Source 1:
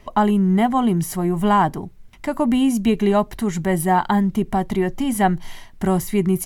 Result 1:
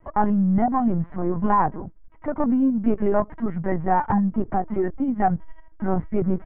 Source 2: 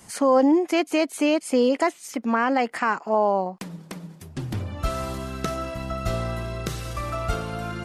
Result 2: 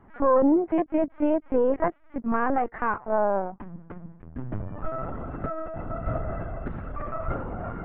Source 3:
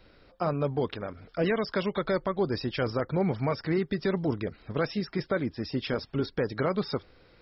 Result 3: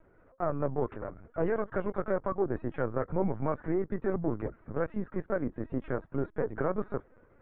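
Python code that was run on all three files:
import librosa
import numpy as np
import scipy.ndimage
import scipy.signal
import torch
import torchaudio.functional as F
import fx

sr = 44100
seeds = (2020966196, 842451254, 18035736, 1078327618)

y = np.where(x < 0.0, 10.0 ** (-7.0 / 20.0) * x, x)
y = scipy.signal.sosfilt(scipy.signal.butter(4, 1600.0, 'lowpass', fs=sr, output='sos'), y)
y = fx.lpc_vocoder(y, sr, seeds[0], excitation='pitch_kept', order=16)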